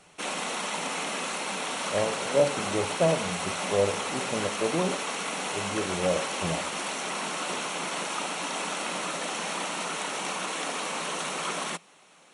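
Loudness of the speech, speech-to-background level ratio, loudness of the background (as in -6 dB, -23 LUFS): -30.0 LUFS, 1.0 dB, -31.0 LUFS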